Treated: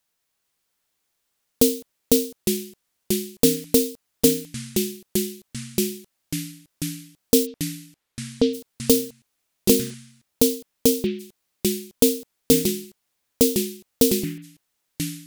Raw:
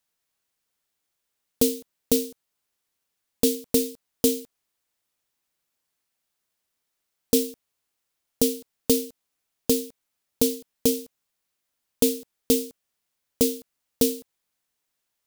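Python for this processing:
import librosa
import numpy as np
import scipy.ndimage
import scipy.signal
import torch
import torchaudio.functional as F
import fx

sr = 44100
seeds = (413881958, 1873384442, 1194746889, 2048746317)

y = fx.lowpass(x, sr, hz=4200.0, slope=24, at=(7.45, 8.53), fade=0.02)
y = fx.echo_pitch(y, sr, ms=438, semitones=-4, count=3, db_per_echo=-6.0)
y = y * 10.0 ** (3.5 / 20.0)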